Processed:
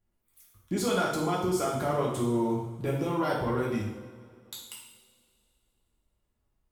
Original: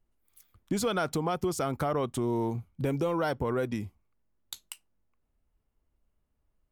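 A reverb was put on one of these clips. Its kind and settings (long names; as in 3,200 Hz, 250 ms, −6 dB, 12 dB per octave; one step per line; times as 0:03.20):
coupled-rooms reverb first 0.76 s, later 2.5 s, from −17 dB, DRR −5 dB
level −4.5 dB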